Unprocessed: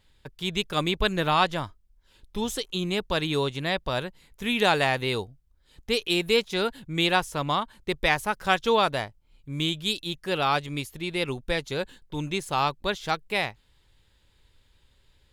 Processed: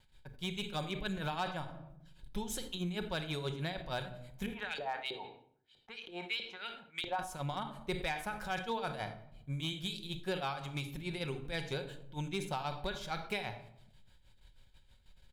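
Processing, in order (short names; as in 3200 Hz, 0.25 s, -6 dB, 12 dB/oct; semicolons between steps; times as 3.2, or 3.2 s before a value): tremolo 6.3 Hz, depth 86%; gate with hold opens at -58 dBFS; 4.46–7.19 LFO band-pass saw up 3.1 Hz 380–4000 Hz; comb 1.3 ms, depth 36%; reverb RT60 0.70 s, pre-delay 5 ms, DRR 8.5 dB; compressor 4:1, threshold -33 dBFS, peak gain reduction 15 dB; hard clip -26 dBFS, distortion -21 dB; dynamic EQ 400 Hz, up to +5 dB, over -47 dBFS, Q 5.8; sustainer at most 95 dB/s; gain -2 dB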